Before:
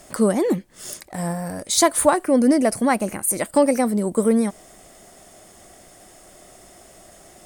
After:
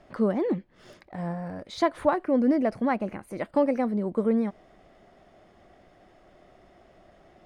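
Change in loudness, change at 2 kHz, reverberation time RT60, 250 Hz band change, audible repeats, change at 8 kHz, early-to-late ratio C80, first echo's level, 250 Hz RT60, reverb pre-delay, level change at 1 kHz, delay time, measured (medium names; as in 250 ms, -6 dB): -7.0 dB, -8.0 dB, no reverb, -6.0 dB, no echo, under -30 dB, no reverb, no echo, no reverb, no reverb, -7.0 dB, no echo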